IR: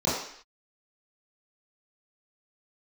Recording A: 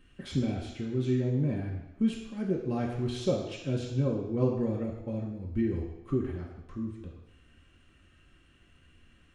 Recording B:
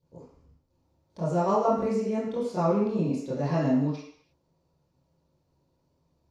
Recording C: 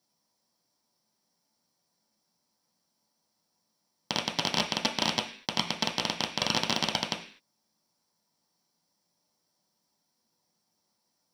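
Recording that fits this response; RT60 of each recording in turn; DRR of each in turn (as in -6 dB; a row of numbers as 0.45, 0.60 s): B; 0.90 s, not exponential, 0.45 s; -3.5, -11.5, 1.5 dB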